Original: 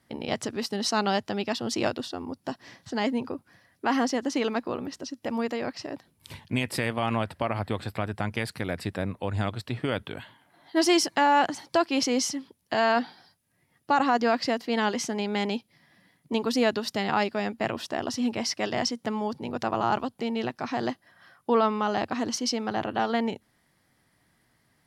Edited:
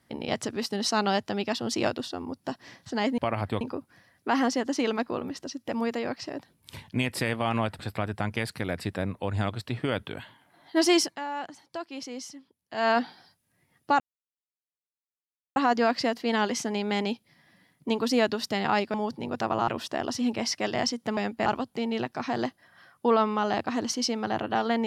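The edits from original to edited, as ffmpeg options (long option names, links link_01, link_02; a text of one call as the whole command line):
ffmpeg -i in.wav -filter_complex "[0:a]asplit=11[link_01][link_02][link_03][link_04][link_05][link_06][link_07][link_08][link_09][link_10][link_11];[link_01]atrim=end=3.182[link_12];[link_02]atrim=start=7.358:end=7.792[link_13];[link_03]atrim=start=3.178:end=7.362[link_14];[link_04]atrim=start=7.788:end=11.16,asetpts=PTS-STARTPTS,afade=type=out:start_time=3.222:duration=0.15:silence=0.223872[link_15];[link_05]atrim=start=11.16:end=12.73,asetpts=PTS-STARTPTS,volume=-13dB[link_16];[link_06]atrim=start=12.73:end=14,asetpts=PTS-STARTPTS,afade=type=in:duration=0.15:silence=0.223872,afade=type=out:start_time=1.266:duration=0.004:curve=hsin,apad=pad_dur=1.56[link_17];[link_07]atrim=start=14:end=17.382,asetpts=PTS-STARTPTS,afade=type=in:duration=0.004:curve=hsin[link_18];[link_08]atrim=start=19.158:end=19.902[link_19];[link_09]atrim=start=17.668:end=19.162[link_20];[link_10]atrim=start=17.378:end=17.672[link_21];[link_11]atrim=start=19.898[link_22];[link_12][link_13]acrossfade=duration=0.004:curve1=hsin:curve2=hsin[link_23];[link_23][link_14]acrossfade=duration=0.004:curve1=hsin:curve2=hsin[link_24];[link_15][link_16][link_17][link_18]concat=n=4:v=0:a=1[link_25];[link_24][link_25]acrossfade=duration=0.004:curve1=hsin:curve2=hsin[link_26];[link_26][link_19]acrossfade=duration=0.004:curve1=hsin:curve2=hsin[link_27];[link_27][link_20]acrossfade=duration=0.004:curve1=hsin:curve2=hsin[link_28];[link_28][link_21]acrossfade=duration=0.004:curve1=hsin:curve2=hsin[link_29];[link_29][link_22]acrossfade=duration=0.004:curve1=hsin:curve2=hsin" out.wav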